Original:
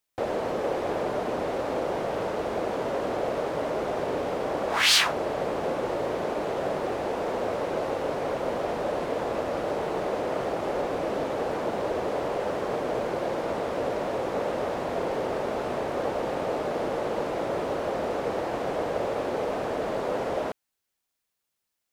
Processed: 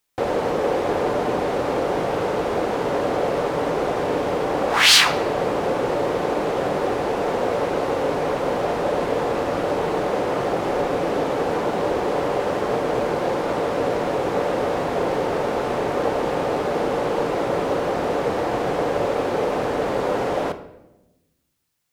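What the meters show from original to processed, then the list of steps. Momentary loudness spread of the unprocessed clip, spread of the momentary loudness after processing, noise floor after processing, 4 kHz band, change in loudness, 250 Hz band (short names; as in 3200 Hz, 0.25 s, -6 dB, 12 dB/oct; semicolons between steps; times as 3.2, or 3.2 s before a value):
1 LU, 1 LU, -58 dBFS, +7.0 dB, +6.5 dB, +7.0 dB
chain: notch 630 Hz, Q 12; shoebox room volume 400 m³, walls mixed, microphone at 0.4 m; gain +6.5 dB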